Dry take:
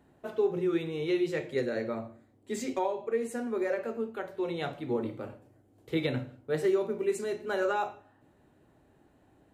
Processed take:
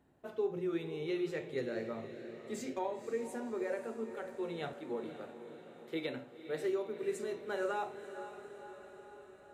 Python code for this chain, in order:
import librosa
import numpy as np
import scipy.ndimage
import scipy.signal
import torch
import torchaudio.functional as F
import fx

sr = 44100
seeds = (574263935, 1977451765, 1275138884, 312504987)

y = fx.highpass(x, sr, hz=260.0, slope=12, at=(4.73, 7.03))
y = fx.echo_diffused(y, sr, ms=519, feedback_pct=61, wet_db=-11)
y = y * librosa.db_to_amplitude(-7.0)